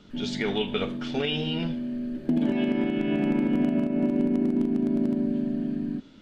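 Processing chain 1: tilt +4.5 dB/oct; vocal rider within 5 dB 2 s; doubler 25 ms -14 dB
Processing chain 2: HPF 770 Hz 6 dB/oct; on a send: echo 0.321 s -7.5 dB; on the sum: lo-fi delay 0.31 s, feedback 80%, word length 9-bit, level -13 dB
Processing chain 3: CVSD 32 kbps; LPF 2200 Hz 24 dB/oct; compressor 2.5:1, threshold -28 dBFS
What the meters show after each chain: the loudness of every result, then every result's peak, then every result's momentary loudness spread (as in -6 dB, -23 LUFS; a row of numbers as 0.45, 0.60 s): -29.0, -34.0, -31.0 LUFS; -13.0, -16.5, -17.5 dBFS; 9, 8, 3 LU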